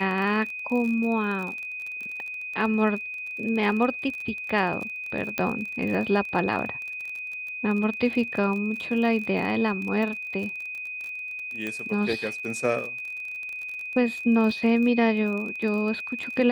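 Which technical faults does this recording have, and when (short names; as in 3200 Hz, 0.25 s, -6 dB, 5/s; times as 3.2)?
crackle 34/s -32 dBFS
tone 2500 Hz -32 dBFS
5.38 pop -12 dBFS
11.67 pop -18 dBFS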